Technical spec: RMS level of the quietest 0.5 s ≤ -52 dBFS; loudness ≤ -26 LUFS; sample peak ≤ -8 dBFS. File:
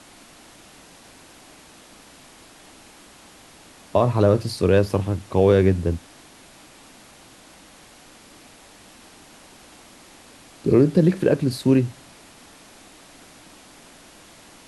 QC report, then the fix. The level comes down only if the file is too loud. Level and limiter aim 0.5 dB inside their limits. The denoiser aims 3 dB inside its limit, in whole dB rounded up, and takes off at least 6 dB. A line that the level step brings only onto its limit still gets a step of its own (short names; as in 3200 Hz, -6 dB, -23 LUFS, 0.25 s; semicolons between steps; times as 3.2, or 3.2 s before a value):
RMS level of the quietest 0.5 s -48 dBFS: fail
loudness -20.0 LUFS: fail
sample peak -5.5 dBFS: fail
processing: gain -6.5 dB